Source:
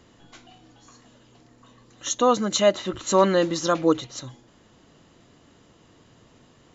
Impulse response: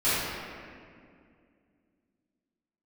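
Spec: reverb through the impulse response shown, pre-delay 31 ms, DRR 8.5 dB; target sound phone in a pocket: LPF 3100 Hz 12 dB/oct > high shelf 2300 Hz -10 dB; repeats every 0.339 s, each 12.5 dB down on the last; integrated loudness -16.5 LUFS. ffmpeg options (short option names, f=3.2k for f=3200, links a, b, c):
-filter_complex "[0:a]aecho=1:1:339|678|1017:0.237|0.0569|0.0137,asplit=2[a][b];[1:a]atrim=start_sample=2205,adelay=31[c];[b][c]afir=irnorm=-1:irlink=0,volume=-23.5dB[d];[a][d]amix=inputs=2:normalize=0,lowpass=3.1k,highshelf=f=2.3k:g=-10,volume=6.5dB"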